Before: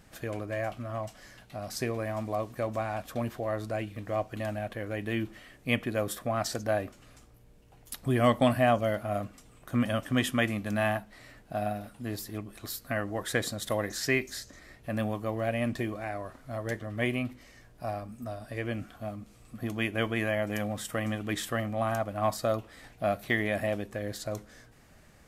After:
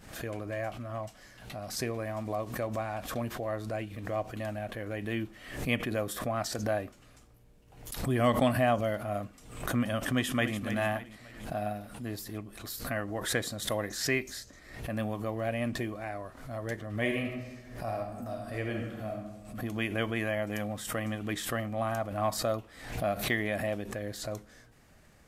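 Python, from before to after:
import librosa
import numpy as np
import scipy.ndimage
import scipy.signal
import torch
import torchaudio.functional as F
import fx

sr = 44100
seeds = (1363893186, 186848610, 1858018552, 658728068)

y = fx.echo_throw(x, sr, start_s=10.04, length_s=0.54, ms=290, feedback_pct=40, wet_db=-9.5)
y = fx.reverb_throw(y, sr, start_s=17.0, length_s=2.2, rt60_s=1.1, drr_db=1.0)
y = fx.pre_swell(y, sr, db_per_s=79.0)
y = F.gain(torch.from_numpy(y), -2.5).numpy()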